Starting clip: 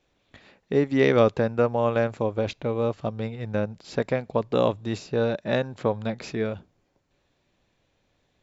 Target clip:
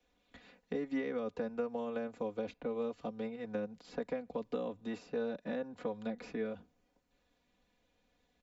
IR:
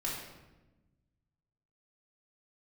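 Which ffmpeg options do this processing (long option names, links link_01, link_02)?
-filter_complex "[0:a]alimiter=limit=-12.5dB:level=0:latency=1:release=96,acrossover=split=110|220|510|2200[link_01][link_02][link_03][link_04][link_05];[link_01]acompressor=threshold=-50dB:ratio=4[link_06];[link_02]acompressor=threshold=-45dB:ratio=4[link_07];[link_03]acompressor=threshold=-33dB:ratio=4[link_08];[link_04]acompressor=threshold=-39dB:ratio=4[link_09];[link_05]acompressor=threshold=-55dB:ratio=4[link_10];[link_06][link_07][link_08][link_09][link_10]amix=inputs=5:normalize=0,aecho=1:1:4.1:0.84,volume=-8dB"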